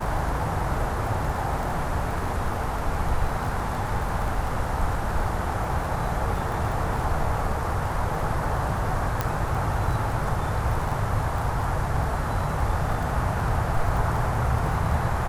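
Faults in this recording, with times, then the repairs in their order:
surface crackle 27 per second −30 dBFS
0:09.21: click −10 dBFS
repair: click removal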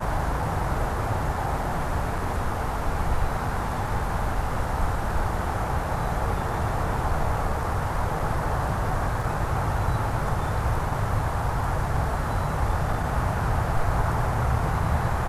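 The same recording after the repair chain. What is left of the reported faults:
0:09.21: click

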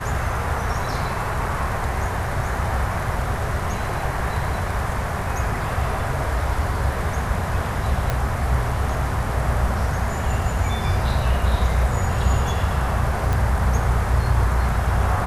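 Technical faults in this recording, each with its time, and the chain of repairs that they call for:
0:08.10: click −9 dBFS
0:13.33: click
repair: click removal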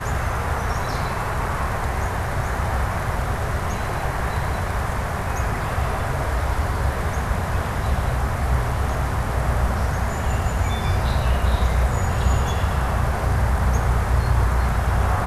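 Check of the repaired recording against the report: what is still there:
none of them is left

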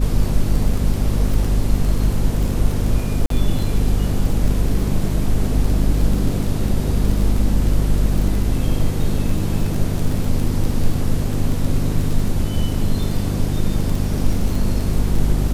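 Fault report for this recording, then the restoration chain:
surface crackle 20 per second −21 dBFS
mains hum 50 Hz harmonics 5 −21 dBFS
0:03.26–0:03.30: drop-out 43 ms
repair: click removal
hum removal 50 Hz, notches 5
repair the gap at 0:03.26, 43 ms

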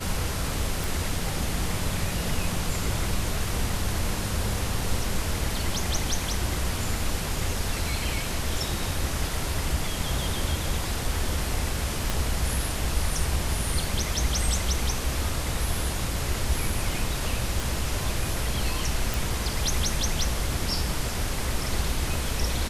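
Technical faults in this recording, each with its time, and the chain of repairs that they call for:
0:00.84: click
0:12.10: click
0:17.60: click
0:19.14: click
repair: click removal

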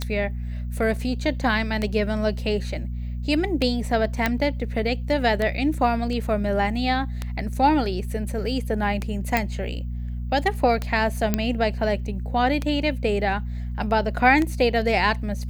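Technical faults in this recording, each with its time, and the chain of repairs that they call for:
mains hum 60 Hz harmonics 4 −29 dBFS
scratch tick 33 1/3 rpm −12 dBFS
0:04.26: click −7 dBFS
0:09.37: click −7 dBFS
0:11.34: click −7 dBFS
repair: click removal
hum removal 60 Hz, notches 4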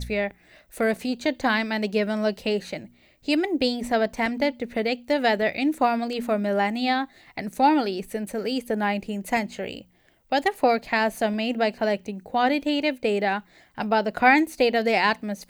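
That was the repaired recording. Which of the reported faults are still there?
none of them is left

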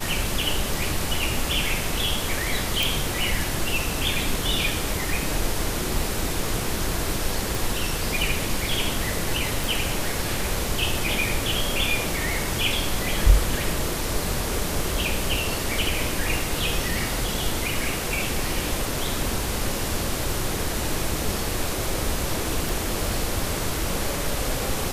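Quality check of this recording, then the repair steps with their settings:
0:02.83: click
0:07.55: click
0:09.64: click
0:22.69: click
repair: click removal

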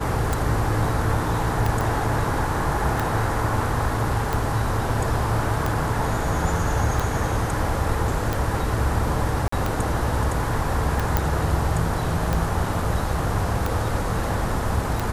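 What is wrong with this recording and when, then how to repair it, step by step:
scratch tick 45 rpm
0:01.81: click
0:09.48–0:09.52: drop-out 44 ms
0:11.17: click −5 dBFS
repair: click removal
repair the gap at 0:09.48, 44 ms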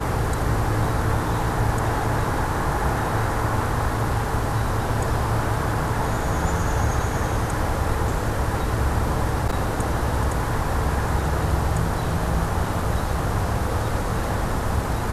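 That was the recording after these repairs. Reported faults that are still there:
none of them is left

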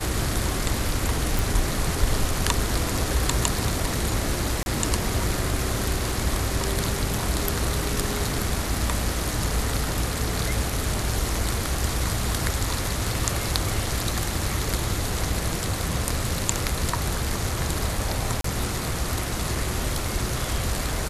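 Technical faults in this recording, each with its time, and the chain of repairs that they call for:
0:01.39: click
0:04.63–0:04.66: drop-out 31 ms
0:18.41–0:18.44: drop-out 33 ms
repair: click removal
repair the gap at 0:04.63, 31 ms
repair the gap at 0:18.41, 33 ms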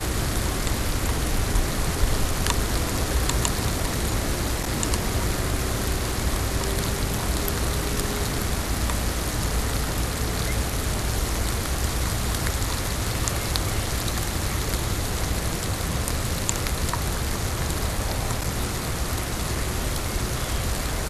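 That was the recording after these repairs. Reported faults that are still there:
none of them is left

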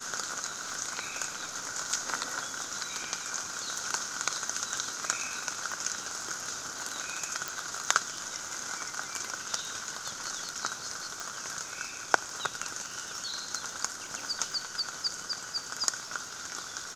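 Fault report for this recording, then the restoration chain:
surface crackle 28 per second −40 dBFS
0:07.48: click
0:11.20: click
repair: click removal

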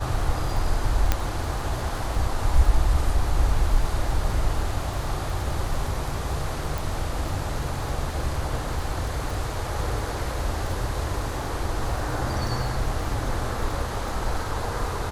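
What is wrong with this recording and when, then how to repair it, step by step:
surface crackle 27 per second −30 dBFS
0:01.12: click −6 dBFS
0:06.78: click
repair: click removal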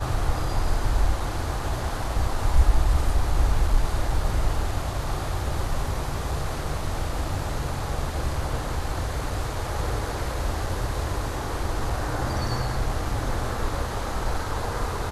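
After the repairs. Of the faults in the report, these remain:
0:01.12: click
0:06.78: click

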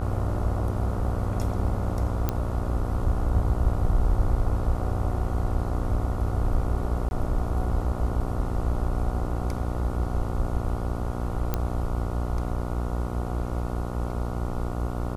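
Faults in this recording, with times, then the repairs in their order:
mains buzz 60 Hz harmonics 24 −30 dBFS
0:02.29: click −11 dBFS
0:07.09–0:07.11: drop-out 21 ms
0:11.54: click −12 dBFS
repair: click removal
hum removal 60 Hz, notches 24
repair the gap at 0:07.09, 21 ms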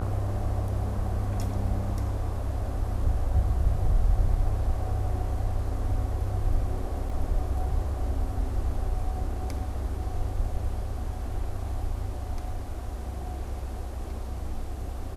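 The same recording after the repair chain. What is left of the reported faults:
none of them is left

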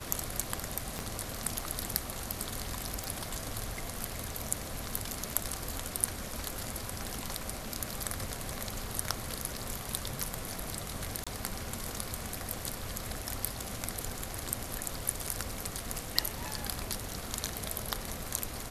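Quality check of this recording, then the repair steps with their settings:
0:00.99: click −21 dBFS
0:03.04: click
0:11.24–0:11.27: drop-out 26 ms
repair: click removal
repair the gap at 0:11.24, 26 ms

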